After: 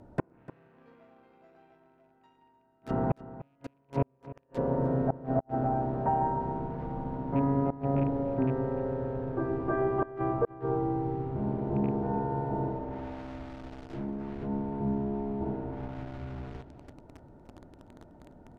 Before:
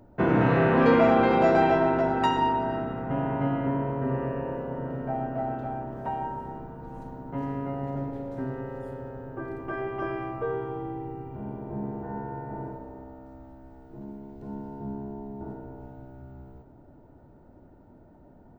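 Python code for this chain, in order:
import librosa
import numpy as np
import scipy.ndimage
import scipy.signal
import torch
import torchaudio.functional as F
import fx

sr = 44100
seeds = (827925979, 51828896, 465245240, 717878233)

p1 = fx.rattle_buzz(x, sr, strikes_db=-29.0, level_db=-30.0)
p2 = fx.cheby_harmonics(p1, sr, harmonics=(3, 8), levels_db=(-18, -39), full_scale_db=-8.0)
p3 = fx.gate_flip(p2, sr, shuts_db=-24.0, range_db=-41)
p4 = fx.quant_dither(p3, sr, seeds[0], bits=8, dither='none')
p5 = p3 + (p4 * librosa.db_to_amplitude(-3.0))
p6 = fx.env_lowpass_down(p5, sr, base_hz=1100.0, full_db=-36.0)
p7 = p6 + fx.echo_single(p6, sr, ms=299, db=-16.0, dry=0)
y = p7 * librosa.db_to_amplitude(4.5)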